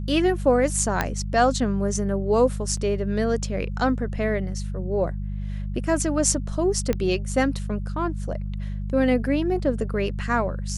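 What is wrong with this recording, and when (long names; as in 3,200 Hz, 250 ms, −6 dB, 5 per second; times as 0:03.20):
mains hum 50 Hz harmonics 4 −29 dBFS
0:01.01: click −8 dBFS
0:02.77: drop-out 3.1 ms
0:06.93: click −12 dBFS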